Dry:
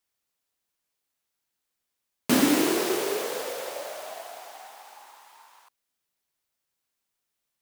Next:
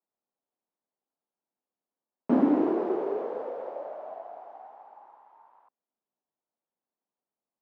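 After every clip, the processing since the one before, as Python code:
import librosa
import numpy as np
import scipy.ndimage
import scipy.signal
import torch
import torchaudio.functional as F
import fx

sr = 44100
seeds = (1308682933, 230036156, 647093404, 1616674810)

y = scipy.signal.sosfilt(scipy.signal.cheby1(2, 1.0, [210.0, 850.0], 'bandpass', fs=sr, output='sos'), x)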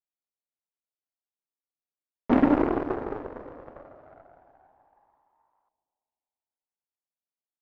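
y = fx.cheby_harmonics(x, sr, harmonics=(5, 6, 7), levels_db=(-31, -21, -17), full_scale_db=-11.0)
y = fx.echo_wet_lowpass(y, sr, ms=342, feedback_pct=39, hz=750.0, wet_db=-15.0)
y = y * 10.0 ** (2.0 / 20.0)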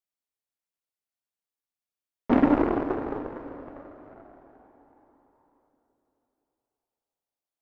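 y = fx.rev_plate(x, sr, seeds[0], rt60_s=4.4, hf_ratio=0.8, predelay_ms=0, drr_db=12.0)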